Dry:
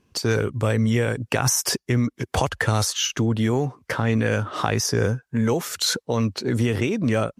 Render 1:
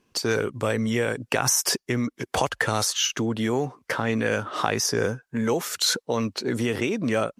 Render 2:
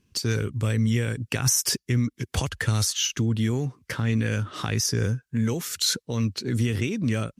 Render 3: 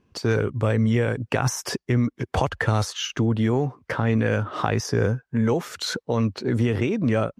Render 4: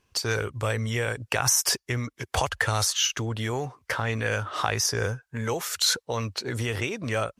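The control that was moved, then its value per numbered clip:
parametric band, centre frequency: 74, 740, 14,000, 220 Hertz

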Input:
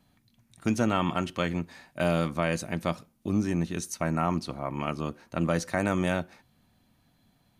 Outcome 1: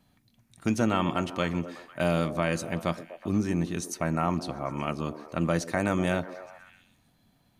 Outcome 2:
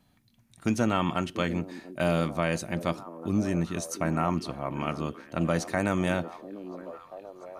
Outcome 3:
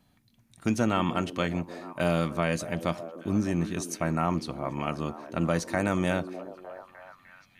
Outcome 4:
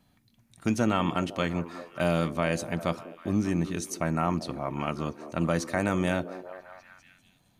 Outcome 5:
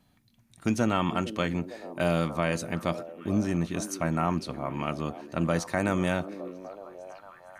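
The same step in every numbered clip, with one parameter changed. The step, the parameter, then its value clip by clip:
echo through a band-pass that steps, delay time: 124, 690, 303, 198, 455 milliseconds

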